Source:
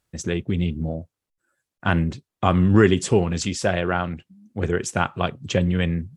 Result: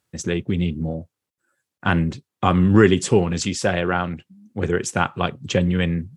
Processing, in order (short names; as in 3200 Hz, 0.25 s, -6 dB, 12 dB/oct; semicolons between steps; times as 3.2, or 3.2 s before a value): HPF 88 Hz; notch 650 Hz, Q 12; gain +2 dB